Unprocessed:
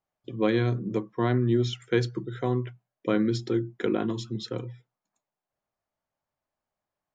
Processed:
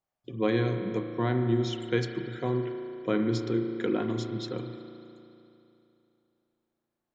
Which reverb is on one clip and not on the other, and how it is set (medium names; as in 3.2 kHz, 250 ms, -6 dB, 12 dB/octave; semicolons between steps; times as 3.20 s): spring tank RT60 2.9 s, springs 35 ms, chirp 40 ms, DRR 5 dB; trim -2.5 dB